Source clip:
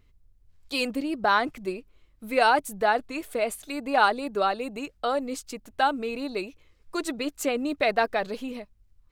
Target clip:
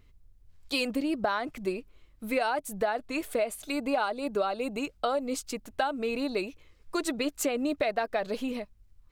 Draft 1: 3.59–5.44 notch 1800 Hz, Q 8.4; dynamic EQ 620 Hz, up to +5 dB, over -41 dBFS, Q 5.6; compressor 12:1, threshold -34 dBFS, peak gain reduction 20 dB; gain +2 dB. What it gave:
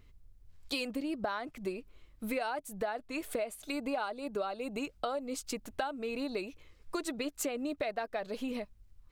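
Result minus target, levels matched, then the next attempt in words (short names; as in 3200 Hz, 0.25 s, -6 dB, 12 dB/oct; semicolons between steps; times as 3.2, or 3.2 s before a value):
compressor: peak gain reduction +7 dB
3.59–5.44 notch 1800 Hz, Q 8.4; dynamic EQ 620 Hz, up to +5 dB, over -41 dBFS, Q 5.6; compressor 12:1, threshold -26.5 dBFS, peak gain reduction 13 dB; gain +2 dB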